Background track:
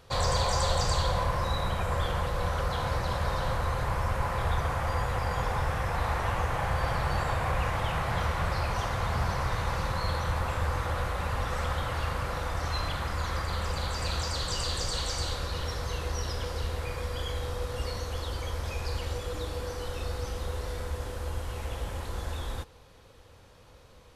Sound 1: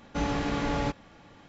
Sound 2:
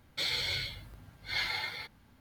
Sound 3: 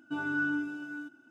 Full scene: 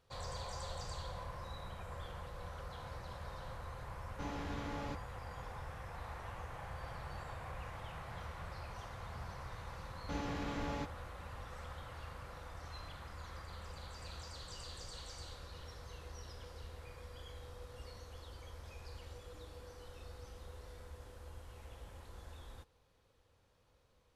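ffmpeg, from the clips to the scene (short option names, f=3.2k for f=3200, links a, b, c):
-filter_complex "[1:a]asplit=2[a][b];[0:a]volume=-17.5dB[c];[a]atrim=end=1.48,asetpts=PTS-STARTPTS,volume=-14.5dB,afade=t=in:d=0.004:c=hsin,afade=t=out:st=1.476:d=0.004:c=hsin,adelay=4040[d];[b]atrim=end=1.48,asetpts=PTS-STARTPTS,volume=-11.5dB,afade=t=in:d=0.004:c=hsin,afade=t=out:st=1.476:d=0.004:c=hsin,adelay=438354S[e];[c][d][e]amix=inputs=3:normalize=0"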